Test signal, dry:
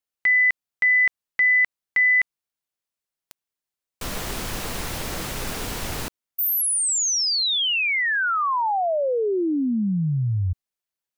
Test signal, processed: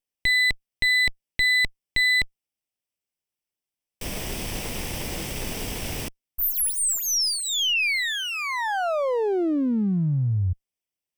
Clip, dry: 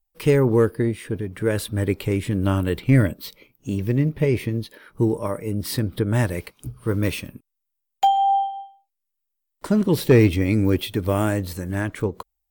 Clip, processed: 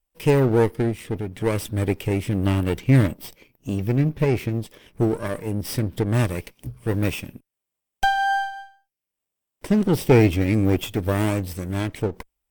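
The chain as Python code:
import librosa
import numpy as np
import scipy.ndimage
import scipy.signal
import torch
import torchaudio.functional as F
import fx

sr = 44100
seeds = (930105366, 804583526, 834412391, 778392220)

y = fx.lower_of_two(x, sr, delay_ms=0.37)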